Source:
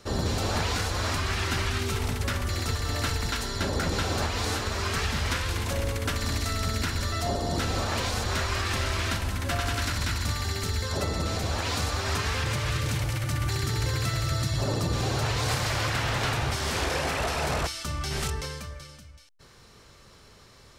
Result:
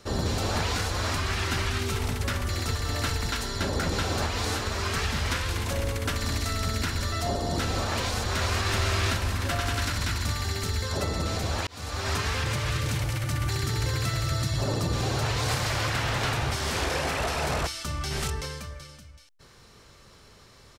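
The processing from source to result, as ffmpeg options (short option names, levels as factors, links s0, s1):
-filter_complex "[0:a]asplit=2[s0][s1];[s1]afade=t=in:st=8.04:d=0.01,afade=t=out:st=8.73:d=0.01,aecho=0:1:370|740|1110|1480|1850|2220|2590|2960:0.668344|0.367589|0.202174|0.111196|0.0611576|0.0336367|0.0185002|0.0101751[s2];[s0][s2]amix=inputs=2:normalize=0,asplit=2[s3][s4];[s3]atrim=end=11.67,asetpts=PTS-STARTPTS,afade=t=out:st=11.666:d=0.004:c=hsin[s5];[s4]atrim=start=11.67,asetpts=PTS-STARTPTS,afade=t=in:d=0.4[s6];[s5][s6]concat=n=2:v=0:a=1"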